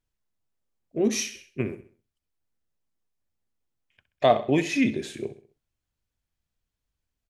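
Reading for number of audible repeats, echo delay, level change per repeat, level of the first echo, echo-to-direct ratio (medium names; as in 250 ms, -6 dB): 3, 65 ms, -8.0 dB, -14.0 dB, -13.0 dB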